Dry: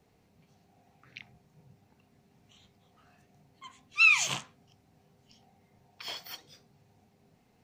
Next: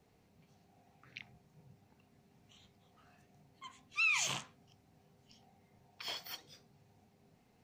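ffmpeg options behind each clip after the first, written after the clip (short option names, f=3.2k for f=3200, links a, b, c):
-af "alimiter=limit=-22dB:level=0:latency=1:release=50,volume=-2.5dB"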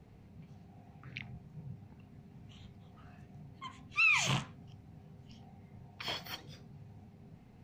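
-af "bass=f=250:g=11,treble=f=4k:g=-8,volume=5.5dB"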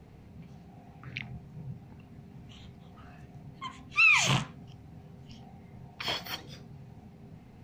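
-af "bandreject=f=50:t=h:w=6,bandreject=f=100:t=h:w=6,bandreject=f=150:t=h:w=6,bandreject=f=200:t=h:w=6,volume=6dB"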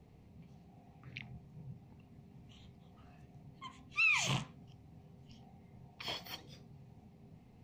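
-af "equalizer=f=1.5k:t=o:w=0.45:g=-8,volume=-8dB"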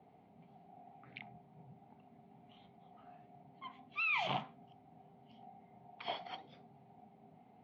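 -af "highpass=320,equalizer=f=330:t=q:w=4:g=-6,equalizer=f=500:t=q:w=4:g=-8,equalizer=f=750:t=q:w=4:g=7,equalizer=f=1.1k:t=q:w=4:g=-6,equalizer=f=1.8k:t=q:w=4:g=-8,equalizer=f=2.6k:t=q:w=4:g=-9,lowpass=f=2.8k:w=0.5412,lowpass=f=2.8k:w=1.3066,volume=5.5dB"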